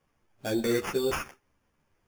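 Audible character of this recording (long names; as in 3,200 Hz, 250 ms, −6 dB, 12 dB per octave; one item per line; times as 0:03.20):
aliases and images of a low sample rate 4,000 Hz, jitter 0%
a shimmering, thickened sound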